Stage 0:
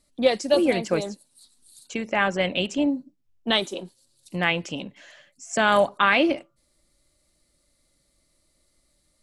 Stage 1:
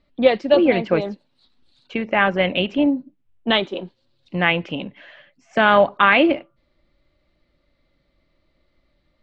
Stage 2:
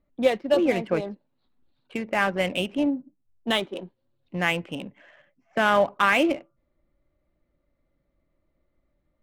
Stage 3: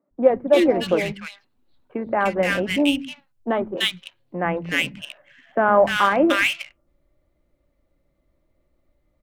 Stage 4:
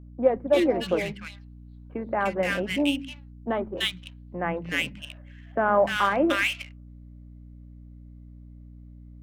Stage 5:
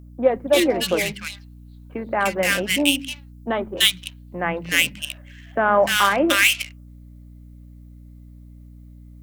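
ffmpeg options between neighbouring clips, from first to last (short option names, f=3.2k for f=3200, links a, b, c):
-af "lowpass=f=3.3k:w=0.5412,lowpass=f=3.3k:w=1.3066,volume=5dB"
-af "adynamicsmooth=sensitivity=5:basefreq=1.8k,volume=-6dB"
-filter_complex "[0:a]acrossover=split=190|1500[a][b][c];[a]adelay=110[d];[c]adelay=300[e];[d][b][e]amix=inputs=3:normalize=0,volume=5.5dB"
-af "aeval=exprs='val(0)+0.0112*(sin(2*PI*60*n/s)+sin(2*PI*2*60*n/s)/2+sin(2*PI*3*60*n/s)/3+sin(2*PI*4*60*n/s)/4+sin(2*PI*5*60*n/s)/5)':c=same,volume=-5dB"
-af "crystalizer=i=5:c=0,volume=2.5dB"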